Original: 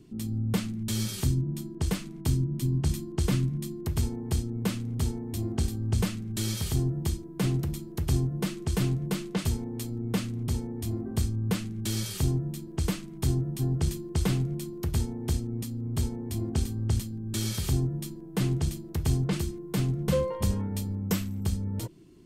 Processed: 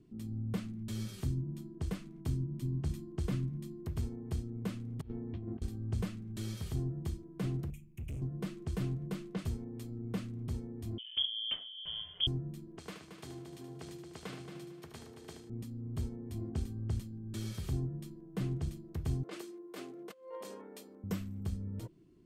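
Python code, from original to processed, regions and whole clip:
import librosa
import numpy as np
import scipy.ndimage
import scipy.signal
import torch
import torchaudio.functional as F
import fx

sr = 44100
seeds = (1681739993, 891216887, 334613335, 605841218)

y = fx.chain(x, sr, fx.lowpass(hz=3100.0, slope=24),
    fx.over_compress(threshold_db=-32.0, ratio=-0.5), at=(5.01, 5.62))
y = fx.chain(y, sr, fx.curve_eq(hz=(120.0, 560.0, 1600.0, 2500.0, 4400.0, 6500.0), db=(0, -26, -17, 10, -25, -1)),
    fx.overload_stage(gain_db=29.0), at=(7.7, 8.22))
y = fx.chain(y, sr, fx.low_shelf(hz=490.0, db=7.5),
    fx.freq_invert(carrier_hz=3300),
    fx.upward_expand(threshold_db=-26.0, expansion=1.5), at=(10.98, 12.27))
y = fx.chain(y, sr, fx.weighting(curve='A'),
    fx.echo_heads(ms=75, heads='first and third', feedback_pct=46, wet_db=-8.0), at=(12.78, 15.5))
y = fx.chain(y, sr, fx.highpass(hz=340.0, slope=24),
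    fx.over_compress(threshold_db=-35.0, ratio=-0.5), at=(19.23, 21.04))
y = fx.high_shelf(y, sr, hz=2900.0, db=-9.5)
y = fx.notch(y, sr, hz=870.0, q=12.0)
y = F.gain(torch.from_numpy(y), -8.5).numpy()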